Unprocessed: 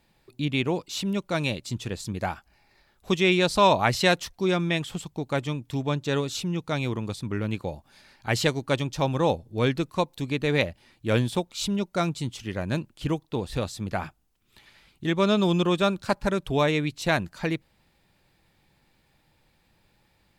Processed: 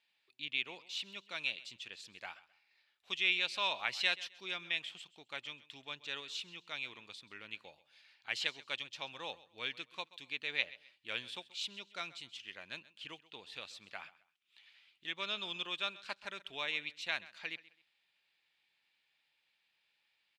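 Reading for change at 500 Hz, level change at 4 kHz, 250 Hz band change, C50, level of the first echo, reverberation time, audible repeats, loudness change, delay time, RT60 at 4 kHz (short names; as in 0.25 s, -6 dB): -24.5 dB, -6.0 dB, -30.5 dB, none, -19.0 dB, none, 2, -12.5 dB, 0.131 s, none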